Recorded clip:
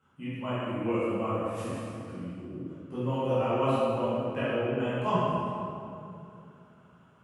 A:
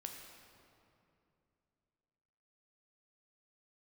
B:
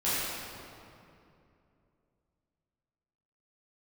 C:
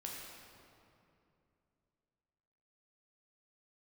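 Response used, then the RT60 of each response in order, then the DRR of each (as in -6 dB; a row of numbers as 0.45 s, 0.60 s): B; 2.7 s, 2.7 s, 2.7 s; 2.0 dB, -12.5 dB, -2.5 dB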